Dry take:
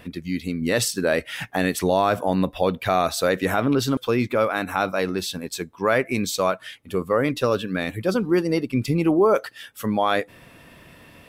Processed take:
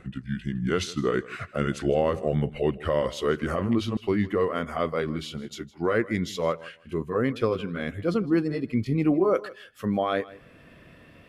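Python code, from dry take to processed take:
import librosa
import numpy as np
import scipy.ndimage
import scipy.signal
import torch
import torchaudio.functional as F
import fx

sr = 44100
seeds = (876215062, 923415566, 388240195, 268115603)

y = fx.pitch_glide(x, sr, semitones=-5.0, runs='ending unshifted')
y = fx.lowpass(y, sr, hz=2300.0, slope=6)
y = fx.peak_eq(y, sr, hz=900.0, db=-12.0, octaves=0.22)
y = fx.echo_feedback(y, sr, ms=159, feedback_pct=16, wet_db=-19.5)
y = y * 10.0 ** (-2.0 / 20.0)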